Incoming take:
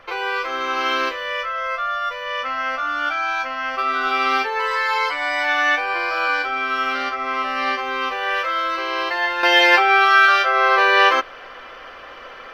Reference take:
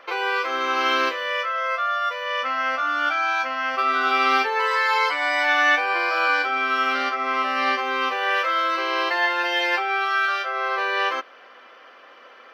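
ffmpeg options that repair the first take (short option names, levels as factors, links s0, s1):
-af "agate=range=0.0891:threshold=0.0355,asetnsamples=n=441:p=0,asendcmd='9.43 volume volume -9dB',volume=1"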